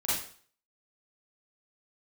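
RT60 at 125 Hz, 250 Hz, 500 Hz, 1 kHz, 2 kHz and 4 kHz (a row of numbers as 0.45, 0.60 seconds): 0.45, 0.45, 0.45, 0.50, 0.45, 0.45 seconds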